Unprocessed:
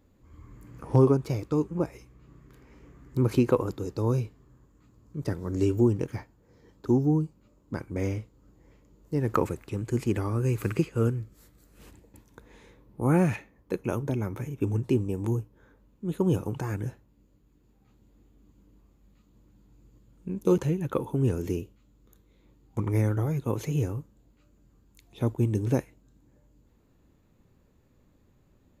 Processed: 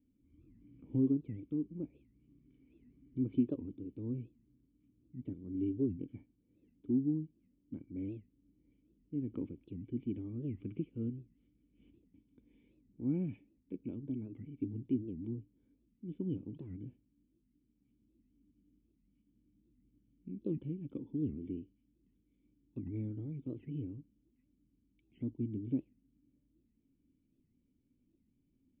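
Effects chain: dynamic EQ 2200 Hz, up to -8 dB, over -53 dBFS, Q 1.2; vocal tract filter i; record warp 78 rpm, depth 250 cents; gain -4 dB

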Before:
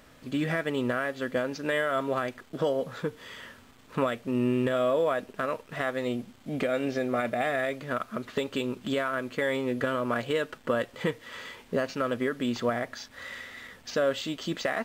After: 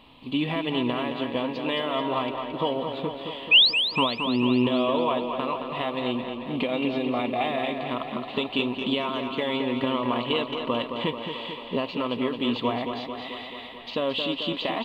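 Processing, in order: painted sound rise, 3.51–3.74, 2400–5400 Hz -23 dBFS; EQ curve 180 Hz 0 dB, 260 Hz +4 dB, 590 Hz -3 dB, 1000 Hz +11 dB, 1500 Hz -15 dB, 2800 Hz +11 dB, 4100 Hz +5 dB, 5800 Hz -21 dB, 9800 Hz -12 dB; tape echo 0.22 s, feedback 72%, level -6 dB, low-pass 5000 Hz

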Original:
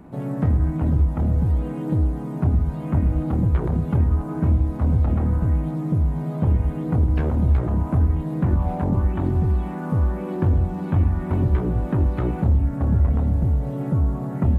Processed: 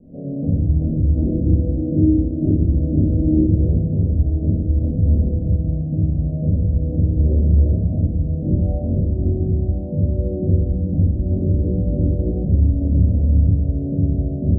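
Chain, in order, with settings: elliptic low-pass 590 Hz, stop band 50 dB; 1.14–3.37 bell 320 Hz +14 dB 0.54 oct; shoebox room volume 150 m³, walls mixed, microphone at 1.9 m; gain -6.5 dB

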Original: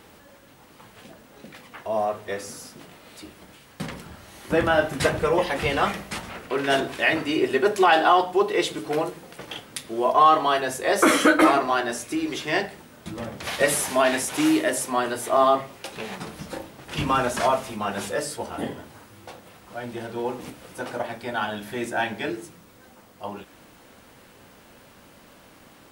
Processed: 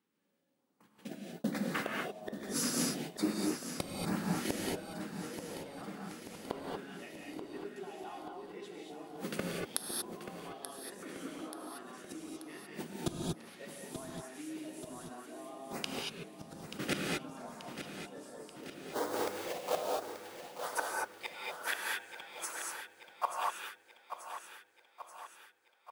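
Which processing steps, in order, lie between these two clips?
18.63–20.65 half-waves squared off; gate -43 dBFS, range -40 dB; compressor 5:1, threshold -20 dBFS, peak gain reduction 8 dB; high-pass sweep 210 Hz -> 1200 Hz, 17.55–21.25; flipped gate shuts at -25 dBFS, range -33 dB; LFO notch saw up 1.2 Hz 570–3700 Hz; feedback echo 0.883 s, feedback 57%, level -10 dB; non-linear reverb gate 0.26 s rising, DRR -1.5 dB; gain +6.5 dB

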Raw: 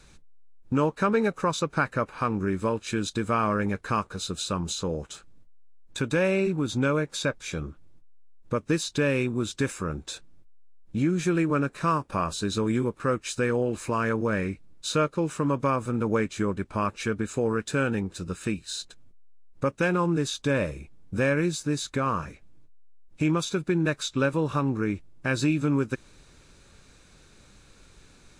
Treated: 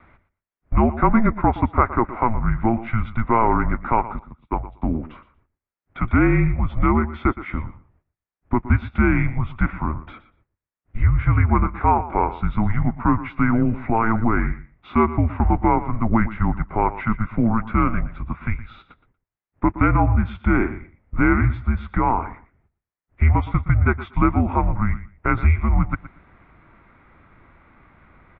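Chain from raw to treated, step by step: 4.19–4.82 gate -27 dBFS, range -34 dB; feedback echo 0.118 s, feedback 16%, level -15 dB; mistuned SSB -230 Hz 150–2400 Hz; gain +8 dB

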